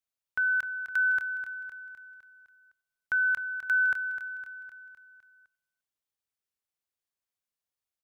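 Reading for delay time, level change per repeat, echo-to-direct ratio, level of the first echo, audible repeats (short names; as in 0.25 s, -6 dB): 0.255 s, -5.0 dB, -8.5 dB, -10.0 dB, 5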